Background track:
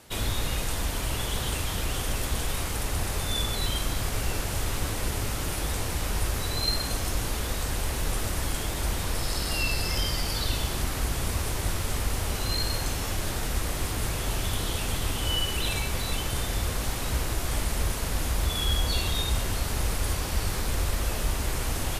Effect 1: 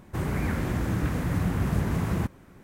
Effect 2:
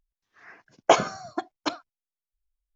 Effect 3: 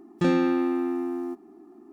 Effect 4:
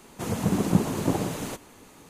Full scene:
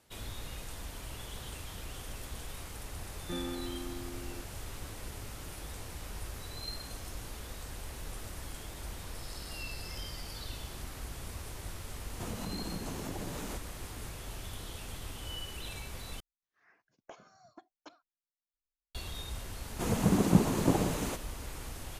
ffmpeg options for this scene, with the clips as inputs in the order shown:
ffmpeg -i bed.wav -i cue0.wav -i cue1.wav -i cue2.wav -i cue3.wav -filter_complex "[4:a]asplit=2[link_01][link_02];[0:a]volume=-14dB[link_03];[link_01]acompressor=threshold=-33dB:ratio=6:attack=3.2:release=140:knee=1:detection=peak[link_04];[2:a]acompressor=threshold=-27dB:ratio=6:attack=2.4:release=254:knee=1:detection=rms[link_05];[link_03]asplit=2[link_06][link_07];[link_06]atrim=end=16.204[link_08];[link_05]atrim=end=2.75,asetpts=PTS-STARTPTS,volume=-17.5dB[link_09];[link_07]atrim=start=18.946[link_10];[3:a]atrim=end=1.92,asetpts=PTS-STARTPTS,volume=-17dB,afade=type=in:duration=0.004:curve=hsin,afade=type=out:start_time=1.916:duration=0.004:curve=hsin,adelay=3080[link_11];[link_04]atrim=end=2.09,asetpts=PTS-STARTPTS,volume=-4dB,afade=type=in:duration=0.004:curve=hsin,afade=type=out:start_time=2.086:duration=0.004:curve=hsin,adelay=12010[link_12];[link_02]atrim=end=2.09,asetpts=PTS-STARTPTS,volume=-2dB,afade=type=in:duration=0.004:curve=hsin,afade=type=out:start_time=2.086:duration=0.004:curve=hsin,adelay=19600[link_13];[link_08][link_09]acrossfade=duration=0.004:curve1=hsin:curve2=hsin[link_14];[link_14][link_10]acrossfade=duration=0.004:curve1=hsin:curve2=hsin[link_15];[link_15][link_11][link_12][link_13]amix=inputs=4:normalize=0" out.wav

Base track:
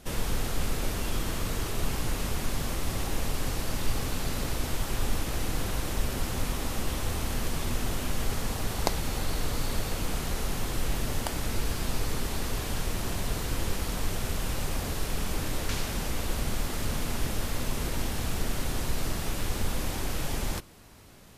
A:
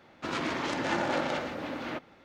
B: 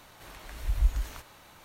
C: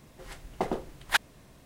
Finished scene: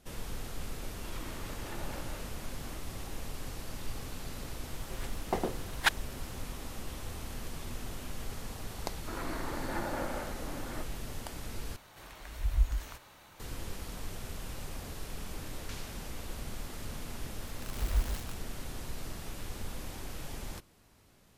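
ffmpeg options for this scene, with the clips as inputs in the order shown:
ffmpeg -i bed.wav -i cue0.wav -i cue1.wav -i cue2.wav -filter_complex "[1:a]asplit=2[link_01][link_02];[2:a]asplit=2[link_03][link_04];[0:a]volume=-10.5dB[link_05];[link_02]lowpass=frequency=2000:width=0.5412,lowpass=frequency=2000:width=1.3066[link_06];[link_04]acrusher=bits=5:mix=0:aa=0.000001[link_07];[link_05]asplit=2[link_08][link_09];[link_08]atrim=end=11.764[link_10];[link_03]atrim=end=1.64,asetpts=PTS-STARTPTS,volume=-2.5dB[link_11];[link_09]atrim=start=13.396[link_12];[link_01]atrim=end=2.24,asetpts=PTS-STARTPTS,volume=-16.5dB,afade=type=in:duration=0.004:curve=hsin,afade=type=out:start_time=2.236:duration=0.004:curve=hsin,adelay=800[link_13];[3:a]atrim=end=1.65,asetpts=PTS-STARTPTS,volume=-2dB,afade=type=in:duration=0.004:curve=hsin,afade=type=out:start_time=1.646:duration=0.004:curve=hsin,adelay=4720[link_14];[link_06]atrim=end=2.24,asetpts=PTS-STARTPTS,volume=-7dB,afade=type=in:duration=0.004:curve=hsin,afade=type=out:start_time=2.236:duration=0.004:curve=hsin,adelay=8840[link_15];[link_07]atrim=end=1.64,asetpts=PTS-STARTPTS,volume=-5dB,afade=type=in:duration=0.004:curve=hsin,afade=type=out:start_time=1.636:duration=0.004:curve=hsin,adelay=17130[link_16];[link_10][link_11]acrossfade=duration=0.004:curve1=hsin:curve2=hsin[link_17];[link_17][link_12]acrossfade=duration=0.004:curve1=hsin:curve2=hsin[link_18];[link_18][link_13][link_14][link_15][link_16]amix=inputs=5:normalize=0" out.wav

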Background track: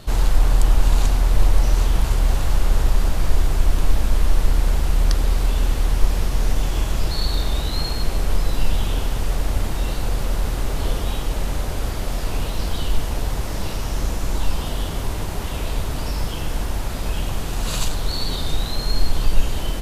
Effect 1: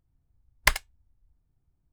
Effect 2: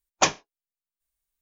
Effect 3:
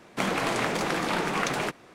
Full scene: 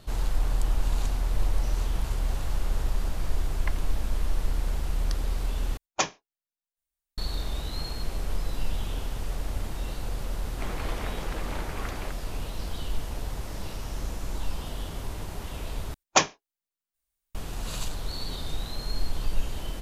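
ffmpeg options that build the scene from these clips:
ffmpeg -i bed.wav -i cue0.wav -i cue1.wav -i cue2.wav -filter_complex "[2:a]asplit=2[link_01][link_02];[0:a]volume=-10dB[link_03];[1:a]lowpass=2300[link_04];[3:a]highshelf=frequency=7600:gain=-12[link_05];[link_03]asplit=3[link_06][link_07][link_08];[link_06]atrim=end=5.774[link_09];[link_01]atrim=end=1.41,asetpts=PTS-STARTPTS,volume=-6dB[link_10];[link_07]atrim=start=7.176:end=15.944[link_11];[link_02]atrim=end=1.41[link_12];[link_08]atrim=start=17.346[link_13];[link_04]atrim=end=1.92,asetpts=PTS-STARTPTS,volume=-15dB,afade=type=in:duration=0.004:curve=hsin,afade=type=out:start_time=1.916:duration=0.004:curve=hsin,adelay=3000[link_14];[link_05]atrim=end=1.94,asetpts=PTS-STARTPTS,volume=-11dB,afade=type=in:duration=0.004:curve=hsin,afade=type=out:start_time=1.936:duration=0.004:curve=hsin,adelay=459522S[link_15];[link_09][link_10]acrossfade=duration=0.004:curve1=hsin:curve2=hsin[link_16];[link_16][link_11]acrossfade=duration=0.004:curve1=hsin:curve2=hsin[link_17];[link_17][link_12]acrossfade=duration=0.004:curve1=hsin:curve2=hsin[link_18];[link_18][link_13]acrossfade=duration=0.004:curve1=hsin:curve2=hsin[link_19];[link_19][link_14][link_15]amix=inputs=3:normalize=0" out.wav

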